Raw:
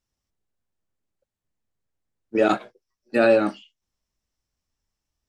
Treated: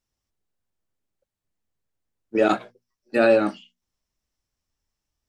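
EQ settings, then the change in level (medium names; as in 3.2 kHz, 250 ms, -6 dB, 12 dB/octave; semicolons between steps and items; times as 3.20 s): hum notches 60/120/180/240 Hz; 0.0 dB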